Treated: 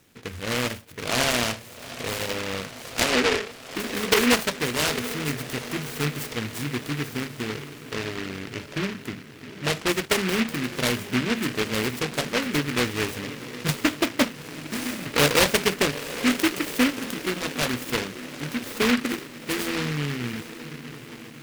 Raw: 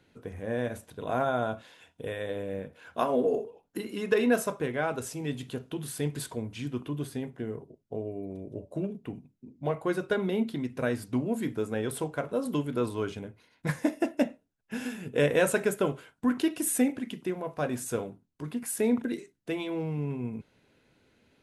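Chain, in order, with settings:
elliptic low-pass filter 6,100 Hz
high-shelf EQ 4,000 Hz +9.5 dB
on a send: feedback delay with all-pass diffusion 823 ms, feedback 60%, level −13 dB
on the sum: short delay modulated by noise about 1,900 Hz, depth 0.29 ms
level +5 dB

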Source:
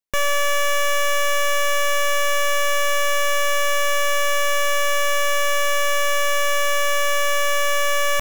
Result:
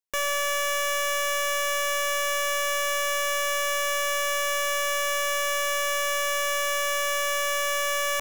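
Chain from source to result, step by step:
bass and treble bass −12 dB, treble +3 dB
level −5.5 dB

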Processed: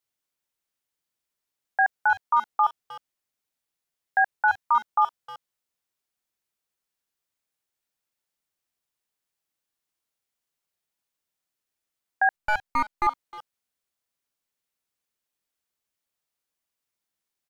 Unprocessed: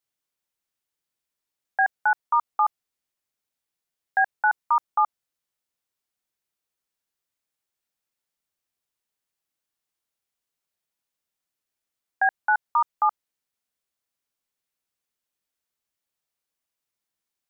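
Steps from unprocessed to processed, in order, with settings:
0:12.36–0:13.07: gain on one half-wave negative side −12 dB
far-end echo of a speakerphone 310 ms, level −15 dB

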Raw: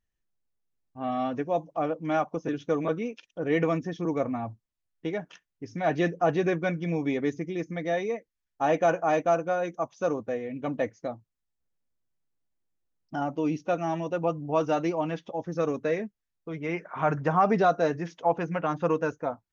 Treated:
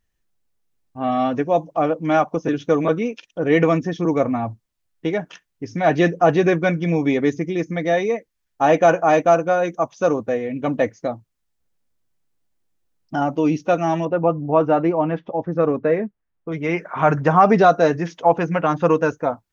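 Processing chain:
0:14.05–0:16.52: low-pass filter 1,700 Hz 12 dB per octave
level +9 dB

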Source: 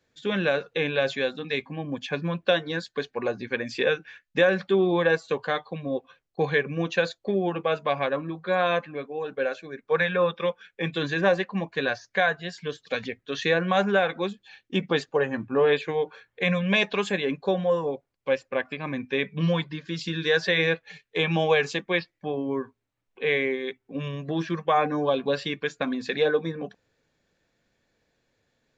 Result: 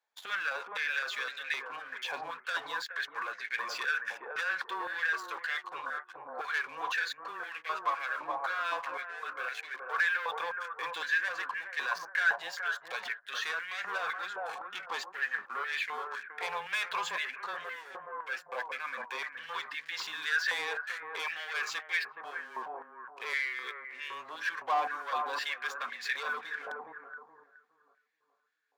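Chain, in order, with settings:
leveller curve on the samples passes 3
brickwall limiter −21 dBFS, peak gain reduction 11.5 dB
frequency shifter −17 Hz
bucket-brigade delay 421 ms, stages 4,096, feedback 35%, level −3.5 dB
high-pass on a step sequencer 3.9 Hz 870–1,900 Hz
level −8.5 dB

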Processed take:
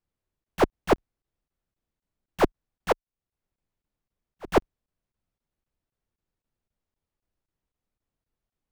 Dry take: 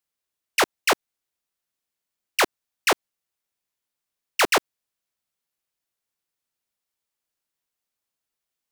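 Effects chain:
phase distortion by the signal itself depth 0.21 ms
spectral tilt −4.5 dB per octave
0:02.92–0:04.48: volume swells 550 ms
regular buffer underruns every 0.26 s, samples 1,024, zero, from 0:00.44

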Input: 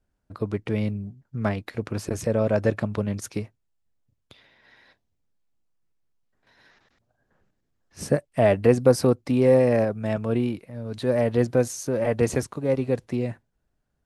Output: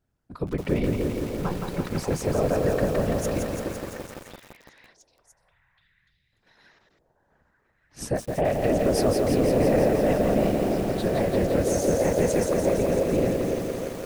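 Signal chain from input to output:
random phases in short frames
0:01.23–0:01.74: phaser with its sweep stopped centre 420 Hz, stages 8
brickwall limiter −16 dBFS, peak gain reduction 11 dB
echo through a band-pass that steps 294 ms, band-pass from 430 Hz, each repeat 0.7 octaves, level −1.5 dB
feedback echo at a low word length 169 ms, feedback 80%, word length 7 bits, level −4 dB

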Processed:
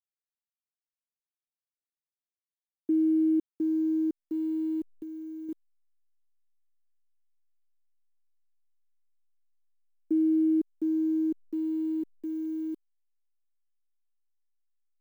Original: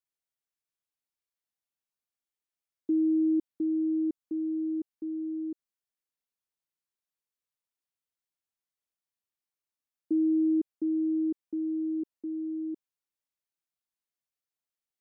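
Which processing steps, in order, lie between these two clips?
hold until the input has moved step −56.5 dBFS
0:04.88–0:05.49: downward compressor, threshold −39 dBFS, peak gain reduction 6.5 dB
level +1 dB

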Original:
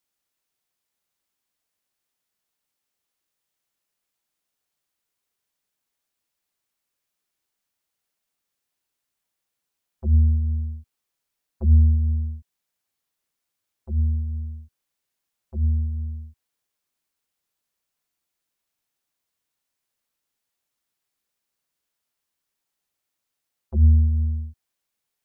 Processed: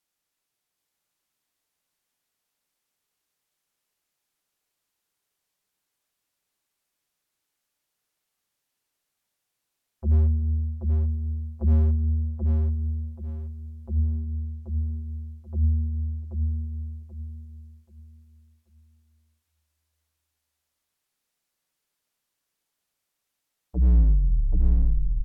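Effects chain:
turntable brake at the end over 1.74 s
treble cut that deepens with the level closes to 550 Hz, closed at −18 dBFS
gain into a clipping stage and back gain 13.5 dB
on a send: repeating echo 782 ms, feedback 33%, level −3.5 dB
on the sum: rectangular room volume 2,000 cubic metres, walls mixed, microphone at 0.35 metres

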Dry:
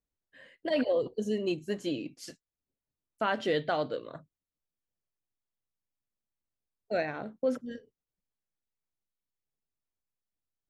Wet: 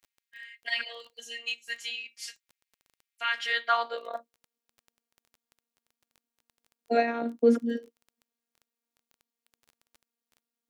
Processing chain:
phases set to zero 233 Hz
high-pass filter sweep 2,100 Hz → 280 Hz, 0:03.33–0:04.67
surface crackle 11 per second −50 dBFS
level +7 dB

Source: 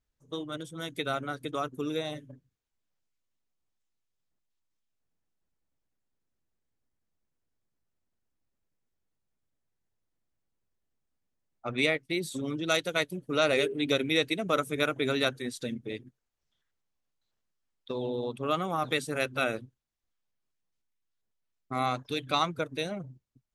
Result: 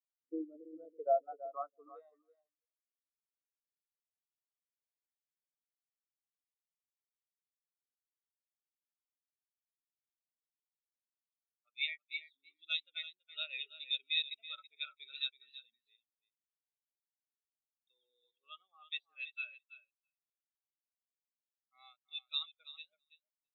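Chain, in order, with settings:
band-pass filter sweep 300 Hz → 3,200 Hz, 0:00.09–0:03.34
on a send: repeating echo 329 ms, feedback 19%, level −6 dB
on the sum: every bin expanded away from the loudest bin 2.5 to 1
level −3.5 dB

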